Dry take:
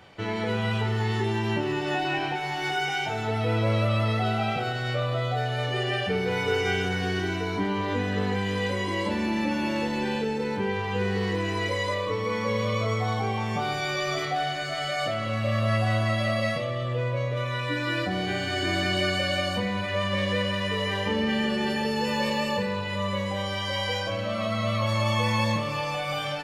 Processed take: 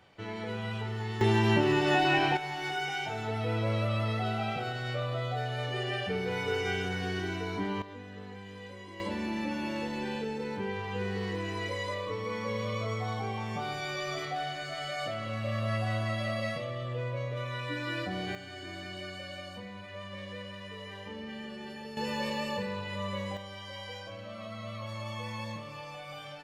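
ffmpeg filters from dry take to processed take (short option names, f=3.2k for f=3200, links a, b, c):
-af "asetnsamples=n=441:p=0,asendcmd='1.21 volume volume 2dB;2.37 volume volume -6dB;7.82 volume volume -18dB;9 volume volume -7dB;18.35 volume volume -16dB;21.97 volume volume -7dB;23.37 volume volume -14dB',volume=-9dB"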